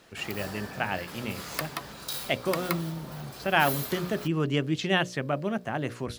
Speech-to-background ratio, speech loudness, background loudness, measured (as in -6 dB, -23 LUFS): 7.5 dB, -29.5 LUFS, -37.0 LUFS